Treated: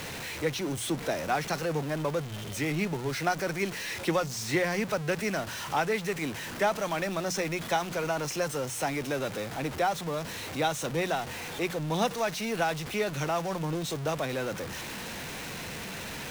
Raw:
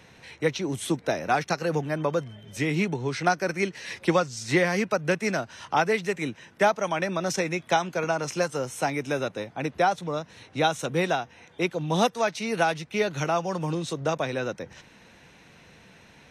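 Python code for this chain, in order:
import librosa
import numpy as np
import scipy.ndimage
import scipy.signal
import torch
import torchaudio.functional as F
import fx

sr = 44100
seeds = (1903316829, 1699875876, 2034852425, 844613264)

y = x + 0.5 * 10.0 ** (-26.5 / 20.0) * np.sign(x)
y = fx.hum_notches(y, sr, base_hz=60, count=3)
y = y * librosa.db_to_amplitude(-6.5)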